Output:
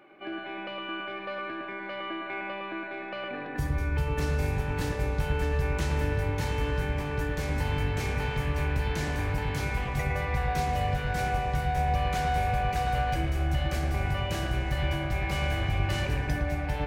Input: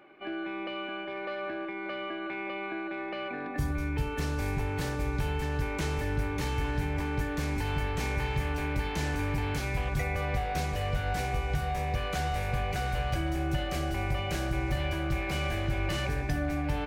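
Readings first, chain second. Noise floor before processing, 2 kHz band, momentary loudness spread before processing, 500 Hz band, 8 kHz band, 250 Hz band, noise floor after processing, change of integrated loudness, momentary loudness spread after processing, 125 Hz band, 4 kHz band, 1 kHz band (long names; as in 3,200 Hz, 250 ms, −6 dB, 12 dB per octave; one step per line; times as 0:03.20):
−37 dBFS, +1.5 dB, 5 LU, +1.5 dB, 0.0 dB, −1.0 dB, −38 dBFS, +2.0 dB, 8 LU, +3.0 dB, +1.0 dB, +3.5 dB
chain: delay with a low-pass on its return 111 ms, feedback 58%, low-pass 2,400 Hz, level −3 dB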